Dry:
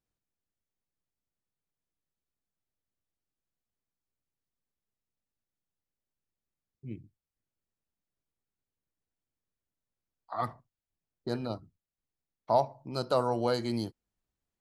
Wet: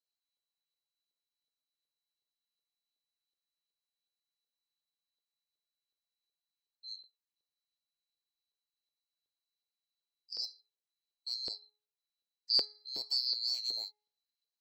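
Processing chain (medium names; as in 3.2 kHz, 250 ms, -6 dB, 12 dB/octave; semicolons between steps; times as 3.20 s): split-band scrambler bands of 4 kHz; FFT filter 130 Hz 0 dB, 700 Hz -11 dB, 1.3 kHz -20 dB, 3.3 kHz -7 dB; LFO high-pass saw up 2.7 Hz 450–3200 Hz; de-hum 419.8 Hz, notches 5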